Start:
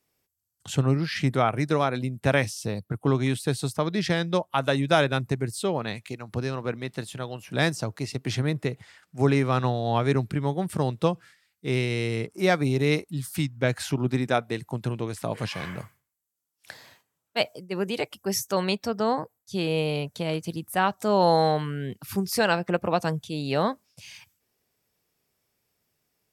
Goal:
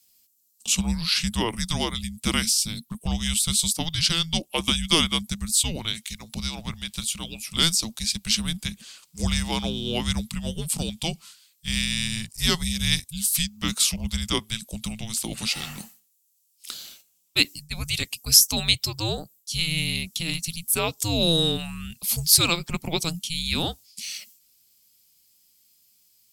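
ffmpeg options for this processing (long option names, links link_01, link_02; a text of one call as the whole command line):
ffmpeg -i in.wav -af "afreqshift=-330,aexciter=amount=7.1:drive=5:freq=2500,volume=-4dB" out.wav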